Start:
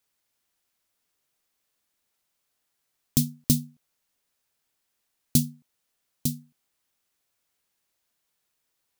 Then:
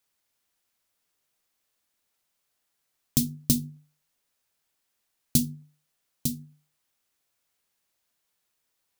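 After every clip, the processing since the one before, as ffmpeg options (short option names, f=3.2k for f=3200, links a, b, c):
-af "bandreject=f=50:t=h:w=6,bandreject=f=100:t=h:w=6,bandreject=f=150:t=h:w=6,bandreject=f=200:t=h:w=6,bandreject=f=250:t=h:w=6,bandreject=f=300:t=h:w=6,bandreject=f=350:t=h:w=6,bandreject=f=400:t=h:w=6,bandreject=f=450:t=h:w=6"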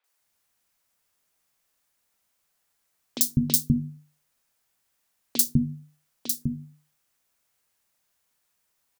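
-filter_complex "[0:a]acrossover=split=350|3600[a][b][c];[c]adelay=40[d];[a]adelay=200[e];[e][b][d]amix=inputs=3:normalize=0,volume=4dB"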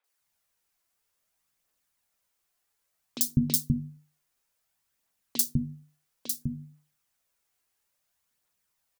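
-af "aphaser=in_gain=1:out_gain=1:delay=3:decay=0.33:speed=0.59:type=triangular,volume=-4.5dB"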